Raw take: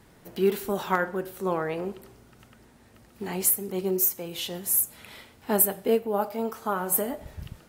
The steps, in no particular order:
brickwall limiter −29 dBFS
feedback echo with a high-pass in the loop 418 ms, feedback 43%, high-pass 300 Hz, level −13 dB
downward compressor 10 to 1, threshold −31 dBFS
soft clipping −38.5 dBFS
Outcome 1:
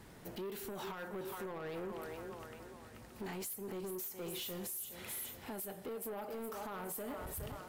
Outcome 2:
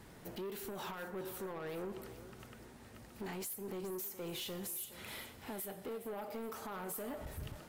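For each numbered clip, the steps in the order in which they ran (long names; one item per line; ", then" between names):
feedback echo with a high-pass in the loop, then downward compressor, then brickwall limiter, then soft clipping
downward compressor, then brickwall limiter, then soft clipping, then feedback echo with a high-pass in the loop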